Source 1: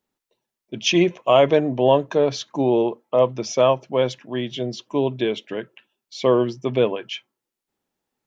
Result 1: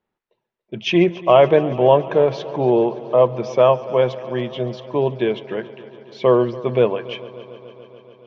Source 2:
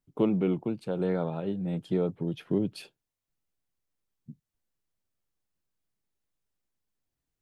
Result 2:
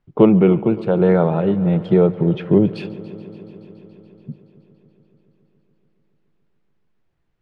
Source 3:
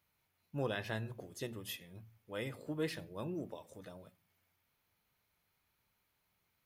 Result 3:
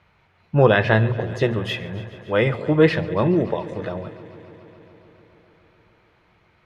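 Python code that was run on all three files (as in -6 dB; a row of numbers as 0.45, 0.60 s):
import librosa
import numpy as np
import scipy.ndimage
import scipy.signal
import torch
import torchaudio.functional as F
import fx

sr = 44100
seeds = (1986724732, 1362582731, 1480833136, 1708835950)

y = scipy.signal.sosfilt(scipy.signal.butter(2, 2400.0, 'lowpass', fs=sr, output='sos'), x)
y = fx.peak_eq(y, sr, hz=270.0, db=-11.5, octaves=0.2)
y = fx.echo_heads(y, sr, ms=142, heads='first and second', feedback_pct=73, wet_db=-21.5)
y = y * 10.0 ** (-1.5 / 20.0) / np.max(np.abs(y))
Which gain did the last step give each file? +3.5, +14.5, +23.0 dB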